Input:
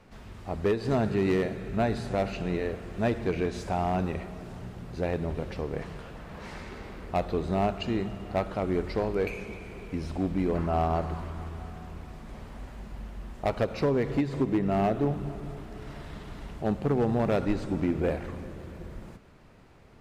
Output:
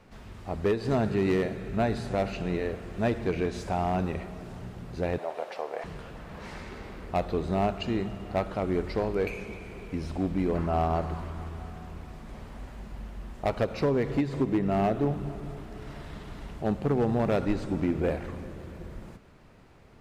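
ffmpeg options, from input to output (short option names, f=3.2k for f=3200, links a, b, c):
-filter_complex "[0:a]asettb=1/sr,asplit=3[a][b][c];[a]atrim=end=5.184[d];[b]atrim=start=5.18:end=5.84,asetpts=PTS-STARTPTS,afade=t=in:d=0.004:c=qsin,afade=t=out:st=0.656:d=0.004:c=qsin,highpass=f=680:t=q:w=2.8[e];[c]atrim=start=5.836[f];[d][e]acrossfade=d=0.004:c1=hsin:c2=qsin[g];[g][f]acrossfade=d=0.004:c1=qsin:c2=hsin"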